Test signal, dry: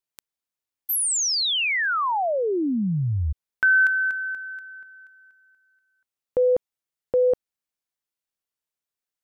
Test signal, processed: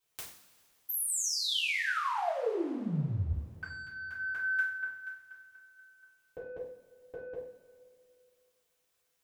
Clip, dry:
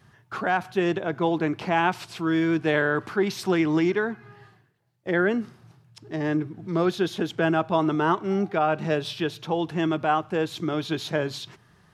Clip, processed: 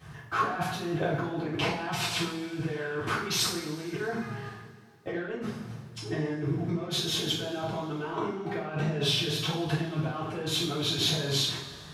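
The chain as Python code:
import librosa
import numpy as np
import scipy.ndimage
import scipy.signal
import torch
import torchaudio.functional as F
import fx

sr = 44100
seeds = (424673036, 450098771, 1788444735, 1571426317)

y = 10.0 ** (-14.5 / 20.0) * np.tanh(x / 10.0 ** (-14.5 / 20.0))
y = fx.over_compress(y, sr, threshold_db=-34.0, ratio=-1.0)
y = fx.rev_double_slope(y, sr, seeds[0], early_s=0.51, late_s=2.6, knee_db=-18, drr_db=-9.5)
y = y * librosa.db_to_amplitude(-7.0)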